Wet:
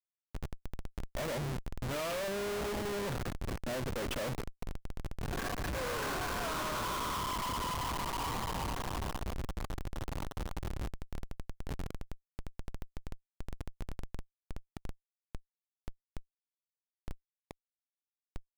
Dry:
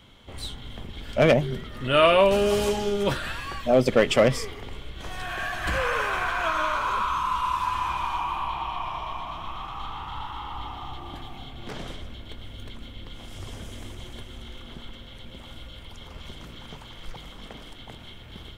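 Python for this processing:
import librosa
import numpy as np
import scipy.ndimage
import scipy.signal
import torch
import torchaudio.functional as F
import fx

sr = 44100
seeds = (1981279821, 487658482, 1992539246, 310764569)

y = fx.high_shelf(x, sr, hz=4600.0, db=-12.0)
y = fx.schmitt(y, sr, flips_db=-30.5)
y = y * 10.0 ** (-7.5 / 20.0)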